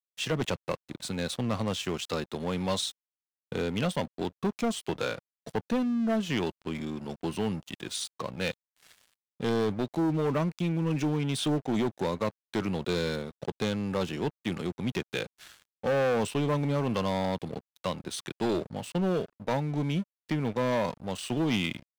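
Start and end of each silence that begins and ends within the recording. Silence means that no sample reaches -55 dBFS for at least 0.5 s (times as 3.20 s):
2.92–3.52 s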